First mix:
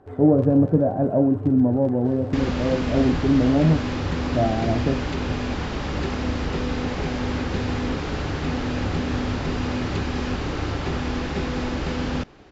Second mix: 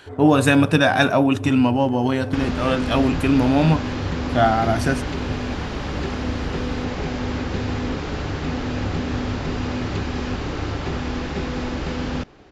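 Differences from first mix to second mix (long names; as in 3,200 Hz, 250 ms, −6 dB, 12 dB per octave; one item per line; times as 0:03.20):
speech: remove Chebyshev low-pass filter 570 Hz, order 3
first sound: send on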